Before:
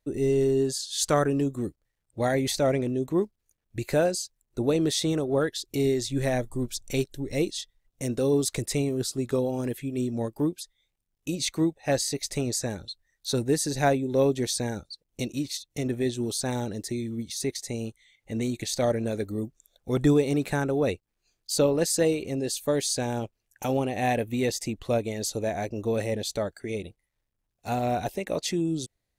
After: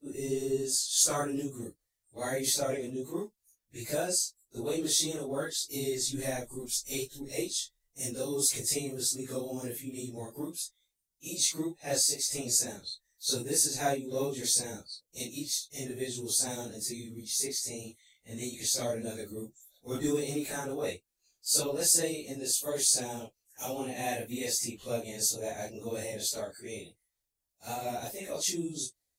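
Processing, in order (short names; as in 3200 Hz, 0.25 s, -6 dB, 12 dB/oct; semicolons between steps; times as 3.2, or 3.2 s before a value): phase scrambler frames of 0.1 s; tone controls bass -5 dB, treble +14 dB; gain -8 dB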